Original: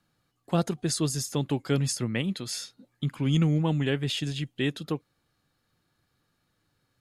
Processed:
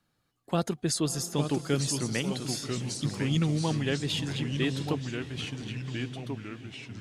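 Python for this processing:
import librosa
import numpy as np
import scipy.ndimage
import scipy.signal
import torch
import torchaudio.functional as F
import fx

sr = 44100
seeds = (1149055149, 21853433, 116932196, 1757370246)

y = fx.echo_pitch(x, sr, ms=786, semitones=-2, count=3, db_per_echo=-6.0)
y = fx.echo_diffused(y, sr, ms=572, feedback_pct=53, wet_db=-14.0)
y = fx.hpss(y, sr, part='harmonic', gain_db=-4)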